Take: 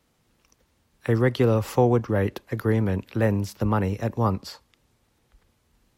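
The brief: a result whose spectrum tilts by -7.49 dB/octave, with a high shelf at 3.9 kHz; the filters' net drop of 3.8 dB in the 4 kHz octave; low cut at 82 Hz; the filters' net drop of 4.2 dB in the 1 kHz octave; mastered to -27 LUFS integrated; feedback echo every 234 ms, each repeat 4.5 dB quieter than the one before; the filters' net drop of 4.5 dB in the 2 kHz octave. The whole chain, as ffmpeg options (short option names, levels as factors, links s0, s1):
-af "highpass=82,equalizer=f=1000:t=o:g=-5,equalizer=f=2000:t=o:g=-3.5,highshelf=f=3900:g=7,equalizer=f=4000:t=o:g=-8.5,aecho=1:1:234|468|702|936|1170|1404|1638|1872|2106:0.596|0.357|0.214|0.129|0.0772|0.0463|0.0278|0.0167|0.01,volume=0.668"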